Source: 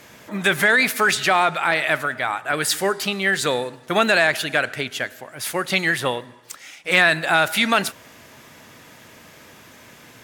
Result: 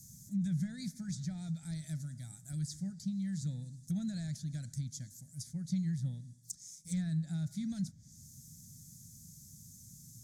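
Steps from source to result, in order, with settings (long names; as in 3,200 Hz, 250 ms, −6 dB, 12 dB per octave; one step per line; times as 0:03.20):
elliptic band-stop filter 170–6,300 Hz, stop band 40 dB
treble cut that deepens with the level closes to 2,400 Hz, closed at −31 dBFS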